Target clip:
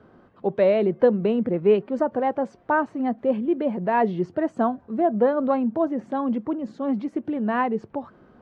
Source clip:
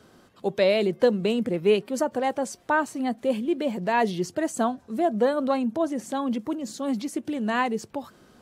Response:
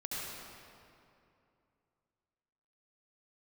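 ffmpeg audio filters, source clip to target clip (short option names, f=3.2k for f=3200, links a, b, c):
-af "lowpass=1.5k,volume=2.5dB"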